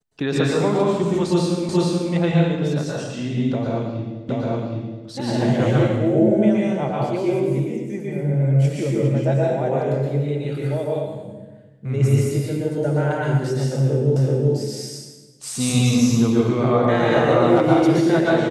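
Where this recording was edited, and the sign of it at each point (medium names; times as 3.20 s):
1.69 s: repeat of the last 0.43 s
4.29 s: repeat of the last 0.77 s
14.16 s: repeat of the last 0.38 s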